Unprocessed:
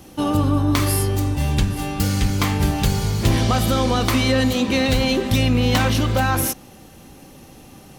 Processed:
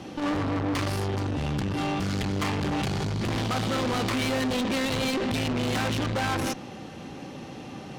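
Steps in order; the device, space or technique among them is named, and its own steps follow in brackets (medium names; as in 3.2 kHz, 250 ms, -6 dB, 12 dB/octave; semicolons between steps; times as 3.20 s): valve radio (band-pass 110–4200 Hz; valve stage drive 30 dB, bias 0.25; transformer saturation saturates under 130 Hz); trim +6 dB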